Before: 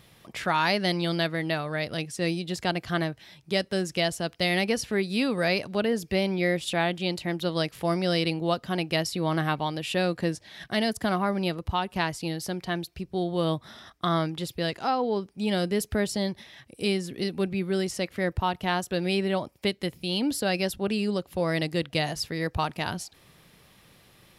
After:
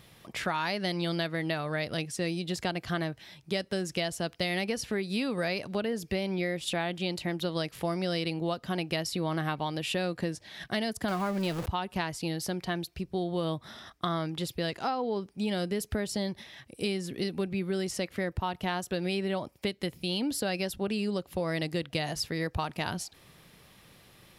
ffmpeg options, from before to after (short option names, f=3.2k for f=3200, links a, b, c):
-filter_complex "[0:a]asettb=1/sr,asplit=3[a][b][c];[a]atrim=end=11.084[d];[b]atrim=start=11.08:end=11.66,asetpts=PTS-STARTPTS,afade=t=in:d=0.004:c=qsin,afade=t=out:st=0.576:d=0.004:c=qsin,aeval=exprs='val(0)+0.5*0.0299*sgn(val(0))':c=same[e];[c]atrim=start=11.656[f];[d][e]acrossfade=d=0.004:c1=hsin:c2=qsin[g];[g][f]acrossfade=d=0.004:c1=qsin:c2=hsin,acompressor=threshold=-27dB:ratio=6"